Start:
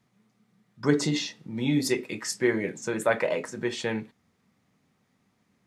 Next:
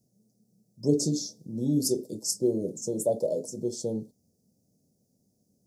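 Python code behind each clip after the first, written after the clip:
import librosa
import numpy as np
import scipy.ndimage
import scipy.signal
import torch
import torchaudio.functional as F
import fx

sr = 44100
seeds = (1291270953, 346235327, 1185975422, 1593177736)

y = scipy.signal.sosfilt(scipy.signal.ellip(3, 1.0, 50, [600.0, 5300.0], 'bandstop', fs=sr, output='sos'), x)
y = fx.high_shelf(y, sr, hz=8600.0, db=10.5)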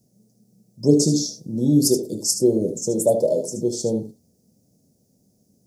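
y = x + 10.0 ** (-9.5 / 20.0) * np.pad(x, (int(75 * sr / 1000.0), 0))[:len(x)]
y = y * librosa.db_to_amplitude(8.0)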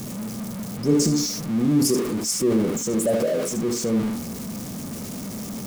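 y = x + 0.5 * 10.0 ** (-23.5 / 20.0) * np.sign(x)
y = fx.transient(y, sr, attack_db=-2, sustain_db=5)
y = fx.small_body(y, sr, hz=(220.0, 1200.0, 2200.0), ring_ms=45, db=7)
y = y * librosa.db_to_amplitude(-5.5)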